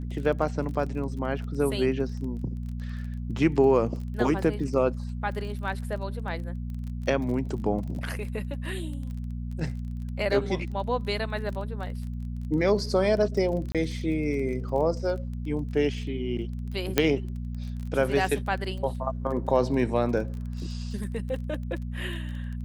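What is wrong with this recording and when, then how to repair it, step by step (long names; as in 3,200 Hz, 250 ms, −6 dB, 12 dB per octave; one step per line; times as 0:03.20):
surface crackle 23 per second −35 dBFS
mains hum 60 Hz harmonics 4 −33 dBFS
0:13.72–0:13.75: drop-out 27 ms
0:16.98: click −5 dBFS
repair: click removal
hum removal 60 Hz, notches 4
repair the gap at 0:13.72, 27 ms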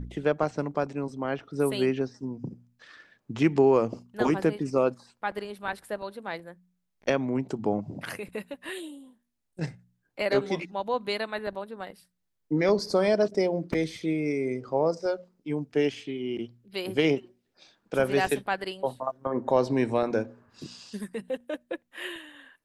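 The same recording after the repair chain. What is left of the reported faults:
none of them is left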